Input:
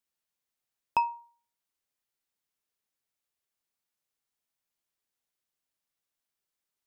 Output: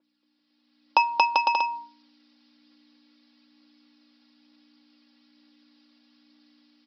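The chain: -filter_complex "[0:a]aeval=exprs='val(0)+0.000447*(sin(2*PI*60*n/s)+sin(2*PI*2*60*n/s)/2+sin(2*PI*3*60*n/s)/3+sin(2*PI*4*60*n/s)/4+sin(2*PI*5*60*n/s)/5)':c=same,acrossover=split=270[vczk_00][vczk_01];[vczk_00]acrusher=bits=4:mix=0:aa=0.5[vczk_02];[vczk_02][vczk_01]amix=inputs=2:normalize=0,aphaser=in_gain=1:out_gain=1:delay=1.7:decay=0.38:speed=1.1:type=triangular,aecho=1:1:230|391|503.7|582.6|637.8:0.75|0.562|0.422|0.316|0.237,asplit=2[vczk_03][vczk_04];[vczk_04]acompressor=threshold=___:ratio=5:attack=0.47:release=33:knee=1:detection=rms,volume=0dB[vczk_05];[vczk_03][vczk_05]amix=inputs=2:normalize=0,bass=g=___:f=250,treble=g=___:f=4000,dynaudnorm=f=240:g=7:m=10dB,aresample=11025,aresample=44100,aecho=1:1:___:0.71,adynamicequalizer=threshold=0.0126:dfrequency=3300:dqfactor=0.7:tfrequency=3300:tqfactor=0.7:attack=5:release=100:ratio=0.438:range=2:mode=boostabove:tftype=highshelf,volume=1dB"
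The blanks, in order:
-44dB, -10, 12, 3.6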